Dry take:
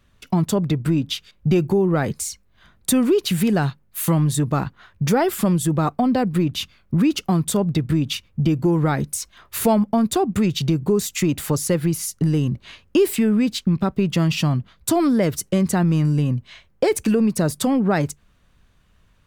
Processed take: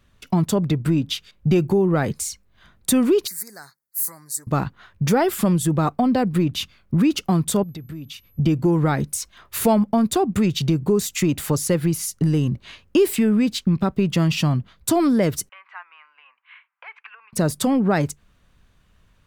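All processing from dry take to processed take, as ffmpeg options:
ffmpeg -i in.wav -filter_complex "[0:a]asettb=1/sr,asplit=3[link_01][link_02][link_03];[link_01]atrim=end=3.274[link_04];[link_02]atrim=start=3.27:end=4.47,asetpts=PTS-STARTPTS,afade=type=in:duration=0.004:curve=qsin,afade=type=out:start_time=1.196:duration=0.004:curve=qsin,asuperstop=centerf=3000:order=8:qfactor=1.4,aderivative[link_05];[link_03]atrim=start=4.466[link_06];[link_04][link_05]acrossfade=duration=0.004:curve1=hsin:curve2=qsin[link_07];[link_07][link_06]acrossfade=duration=0.004:curve1=qsin:curve2=hsin,asettb=1/sr,asplit=3[link_08][link_09][link_10];[link_08]atrim=end=7.634[link_11];[link_09]atrim=start=7.63:end=8.39,asetpts=PTS-STARTPTS,afade=type=in:duration=0.004:curve=qsin,afade=type=out:start_time=0.756:duration=0.004:curve=qsin,acompressor=threshold=-43dB:ratio=2:attack=3.2:release=140:knee=1:detection=peak,aeval=exprs='val(0)+0.00126*sin(2*PI*12000*n/s)':channel_layout=same[link_12];[link_10]atrim=start=8.386[link_13];[link_11][link_12]acrossfade=duration=0.004:curve1=hsin:curve2=qsin[link_14];[link_14][link_13]acrossfade=duration=0.004:curve1=qsin:curve2=hsin,asettb=1/sr,asplit=3[link_15][link_16][link_17];[link_15]atrim=end=15.494[link_18];[link_16]atrim=start=15.49:end=17.33,asetpts=PTS-STARTPTS,afade=type=in:duration=0.004:curve=qsin,afade=type=out:start_time=1.836:duration=0.004:curve=qsin,acompressor=threshold=-24dB:ratio=2.5:attack=3.2:release=140:knee=1:detection=peak,asuperpass=centerf=1600:order=8:qfactor=0.92,bandreject=frequency=1800:width=23[link_19];[link_17]atrim=start=17.326[link_20];[link_18][link_19]acrossfade=duration=0.004:curve1=hsin:curve2=qsin[link_21];[link_21][link_20]acrossfade=duration=0.004:curve1=qsin:curve2=hsin" out.wav

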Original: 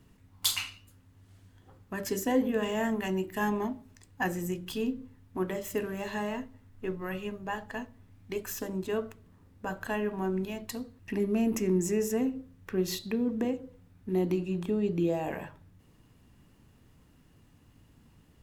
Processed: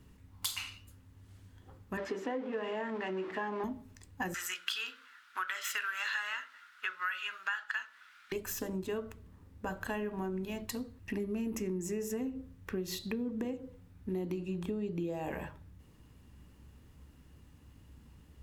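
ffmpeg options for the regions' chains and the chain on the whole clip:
ffmpeg -i in.wav -filter_complex "[0:a]asettb=1/sr,asplit=3[link_01][link_02][link_03];[link_01]atrim=end=1.974[link_04];[link_02]atrim=start=1.97:end=3.64,asetpts=PTS-STARTPTS,afade=type=in:duration=0.004:curve=qsin,afade=type=out:start_time=1.666:duration=0.004:curve=qsin,aeval=exprs='val(0)+0.5*0.0178*sgn(val(0))':channel_layout=same,highpass=340,lowpass=2300[link_05];[link_03]atrim=start=3.636[link_06];[link_04][link_05]acrossfade=duration=0.004:curve1=hsin:curve2=qsin[link_07];[link_07][link_06]acrossfade=duration=0.004:curve1=qsin:curve2=hsin,asettb=1/sr,asplit=3[link_08][link_09][link_10];[link_08]atrim=end=4.344[link_11];[link_09]atrim=start=4.34:end=8.32,asetpts=PTS-STARTPTS,afade=type=in:duration=0.004:curve=qsin,afade=type=out:start_time=3.976:duration=0.004:curve=qsin,highpass=frequency=1400:width_type=q:width=11,equalizer=frequency=3600:width=0.56:gain=14[link_12];[link_10]atrim=start=8.316[link_13];[link_11][link_12]acrossfade=duration=0.004:curve1=hsin:curve2=qsin[link_14];[link_14][link_13]acrossfade=duration=0.004:curve1=qsin:curve2=hsin,equalizer=frequency=67:width=6.4:gain=15,bandreject=frequency=690:width=13,acompressor=threshold=-33dB:ratio=6" out.wav

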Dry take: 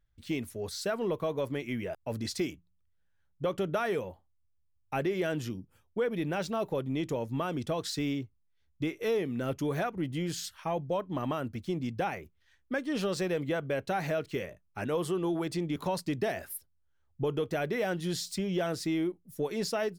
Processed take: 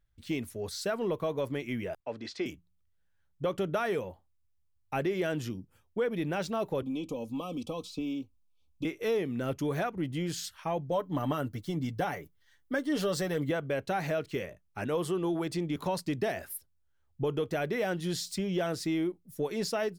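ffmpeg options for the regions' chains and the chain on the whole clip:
ffmpeg -i in.wav -filter_complex "[0:a]asettb=1/sr,asplit=3[link_01][link_02][link_03];[link_01]atrim=end=2.004[link_04];[link_02]atrim=start=2:end=2.46,asetpts=PTS-STARTPTS,afade=type=in:duration=0.004:curve=qsin,afade=type=out:start_time=0.456:duration=0.004:curve=qsin,lowpass=frequency=8300:width=0.5412,lowpass=frequency=8300:width=1.3066,acrossover=split=270 4300:gain=0.178 1 0.141[link_05][link_06][link_07];[link_05][link_06][link_07]amix=inputs=3:normalize=0[link_08];[link_03]atrim=start=2.456[link_09];[link_04][link_08]acrossfade=duration=0.004:curve1=hsin:curve2=qsin[link_10];[link_10][link_09]acrossfade=duration=0.004:curve1=qsin:curve2=hsin,asettb=1/sr,asplit=3[link_11][link_12][link_13];[link_11]atrim=end=6.824[link_14];[link_12]atrim=start=6.82:end=8.85,asetpts=PTS-STARTPTS,afade=type=in:duration=0.004:curve=qsin,afade=type=out:start_time=2.026:duration=0.004:curve=qsin,aecho=1:1:3.9:0.65,atrim=end_sample=89523,acrossover=split=280|2700[link_15][link_16][link_17];[link_15]acompressor=threshold=-39dB:ratio=4[link_18];[link_16]acompressor=threshold=-37dB:ratio=4[link_19];[link_17]acompressor=threshold=-51dB:ratio=4[link_20];[link_18][link_19][link_20]amix=inputs=3:normalize=0,asuperstop=centerf=1700:order=12:qfactor=1.7[link_21];[link_13]atrim=start=8.846[link_22];[link_14][link_21]acrossfade=duration=0.004:curve1=hsin:curve2=qsin[link_23];[link_23][link_22]acrossfade=duration=0.004:curve1=qsin:curve2=hsin,asettb=1/sr,asplit=3[link_24][link_25][link_26];[link_24]atrim=end=10.914[link_27];[link_25]atrim=start=10.91:end=13.51,asetpts=PTS-STARTPTS,afade=type=in:duration=0.004:curve=qsin,afade=type=out:start_time=2.596:duration=0.004:curve=qsin,highshelf=frequency=11000:gain=9,bandreject=frequency=2500:width=6.2,aecho=1:1:6.9:0.49,atrim=end_sample=114660[link_28];[link_26]atrim=start=13.506[link_29];[link_27][link_28]acrossfade=duration=0.004:curve1=hsin:curve2=qsin[link_30];[link_30][link_29]acrossfade=duration=0.004:curve1=qsin:curve2=hsin" out.wav

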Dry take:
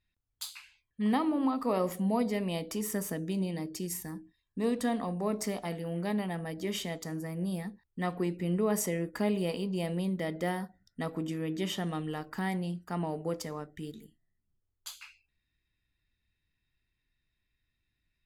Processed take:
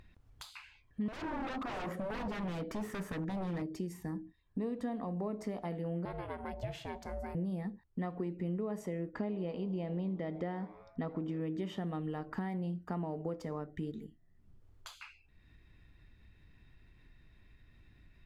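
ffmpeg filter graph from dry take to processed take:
ffmpeg -i in.wav -filter_complex "[0:a]asettb=1/sr,asplit=3[link_01][link_02][link_03];[link_01]atrim=end=1.084[link_04];[link_02]atrim=start=1.08:end=3.62,asetpts=PTS-STARTPTS,afade=type=in:duration=0.004:curve=qsin,afade=type=out:start_time=2.536:duration=0.004:curve=qsin,equalizer=frequency=1600:width_type=o:width=0.76:gain=10.5,aeval=exprs='0.0251*(abs(mod(val(0)/0.0251+3,4)-2)-1)':channel_layout=same[link_05];[link_03]atrim=start=3.616[link_06];[link_04][link_05]acrossfade=duration=0.004:curve1=hsin:curve2=qsin[link_07];[link_07][link_06]acrossfade=duration=0.004:curve1=qsin:curve2=hsin,asettb=1/sr,asplit=3[link_08][link_09][link_10];[link_08]atrim=end=6.054[link_11];[link_09]atrim=start=6.05:end=7.35,asetpts=PTS-STARTPTS,afade=type=in:duration=0.004:curve=qsin,afade=type=out:start_time=1.296:duration=0.004:curve=qsin,highpass=frequency=300:width=0.5412,highpass=frequency=300:width=1.3066,aeval=exprs='val(0)*sin(2*PI*260*n/s)':channel_layout=same[link_12];[link_10]atrim=start=7.346[link_13];[link_11][link_12]acrossfade=duration=0.004:curve1=hsin:curve2=qsin[link_14];[link_14][link_13]acrossfade=duration=0.004:curve1=qsin:curve2=hsin,asettb=1/sr,asplit=3[link_15][link_16][link_17];[link_15]atrim=end=9.124[link_18];[link_16]atrim=start=9.12:end=11.41,asetpts=PTS-STARTPTS,afade=type=in:duration=0.004:curve=qsin,afade=type=out:start_time=2.286:duration=0.004:curve=qsin,lowpass=5400,asplit=5[link_19][link_20][link_21][link_22][link_23];[link_20]adelay=82,afreqshift=120,volume=-22.5dB[link_24];[link_21]adelay=164,afreqshift=240,volume=-27.1dB[link_25];[link_22]adelay=246,afreqshift=360,volume=-31.7dB[link_26];[link_23]adelay=328,afreqshift=480,volume=-36.2dB[link_27];[link_19][link_24][link_25][link_26][link_27]amix=inputs=5:normalize=0,atrim=end_sample=100989[link_28];[link_17]atrim=start=11.406[link_29];[link_18][link_28]acrossfade=duration=0.004:curve1=hsin:curve2=qsin[link_30];[link_30][link_29]acrossfade=duration=0.004:curve1=qsin:curve2=hsin,acompressor=threshold=-40dB:ratio=6,lowpass=frequency=1000:poles=1,acompressor=mode=upward:threshold=-51dB:ratio=2.5,volume=6dB" out.wav

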